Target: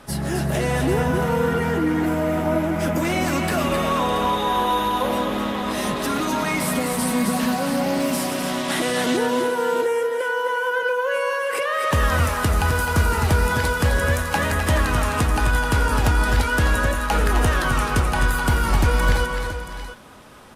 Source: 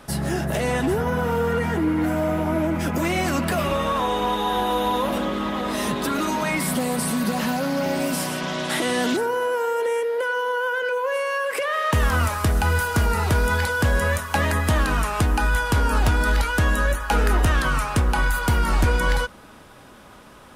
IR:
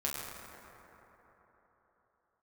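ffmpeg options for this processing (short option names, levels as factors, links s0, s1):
-af "aecho=1:1:252|260|345|605|677:0.251|0.447|0.133|0.158|0.251" -ar 32000 -c:a aac -b:a 64k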